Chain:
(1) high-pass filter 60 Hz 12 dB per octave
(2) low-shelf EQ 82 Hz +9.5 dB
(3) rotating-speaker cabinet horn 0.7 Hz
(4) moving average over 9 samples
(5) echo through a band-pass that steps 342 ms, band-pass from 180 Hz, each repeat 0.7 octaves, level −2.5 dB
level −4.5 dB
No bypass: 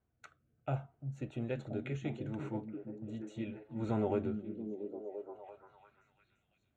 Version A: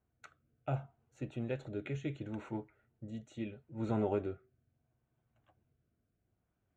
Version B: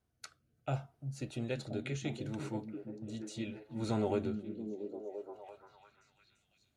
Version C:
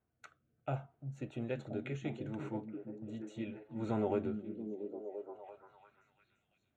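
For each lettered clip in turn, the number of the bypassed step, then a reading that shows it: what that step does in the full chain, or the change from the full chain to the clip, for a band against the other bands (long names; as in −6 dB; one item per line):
5, echo-to-direct ratio −11.5 dB to none audible
4, change in momentary loudness spread +4 LU
2, 125 Hz band −2.5 dB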